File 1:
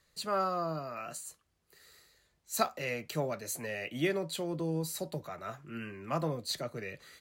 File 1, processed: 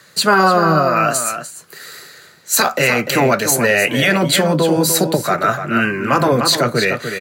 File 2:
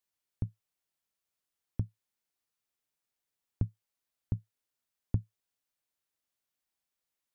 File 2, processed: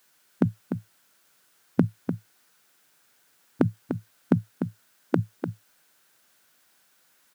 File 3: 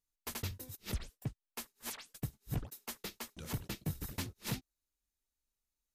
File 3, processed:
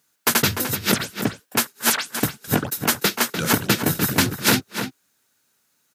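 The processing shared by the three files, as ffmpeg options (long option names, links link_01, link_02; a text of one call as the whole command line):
ffmpeg -i in.wav -filter_complex "[0:a]afftfilt=real='re*lt(hypot(re,im),0.158)':imag='im*lt(hypot(re,im),0.158)':win_size=1024:overlap=0.75,highpass=frequency=120:width=0.5412,highpass=frequency=120:width=1.3066,equalizer=frequency=1500:width_type=o:width=0.32:gain=8.5,asplit=2[link_01][link_02];[link_02]adelay=297.4,volume=-8dB,highshelf=frequency=4000:gain=-6.69[link_03];[link_01][link_03]amix=inputs=2:normalize=0,alimiter=level_in=26dB:limit=-1dB:release=50:level=0:latency=1,volume=-2.5dB" out.wav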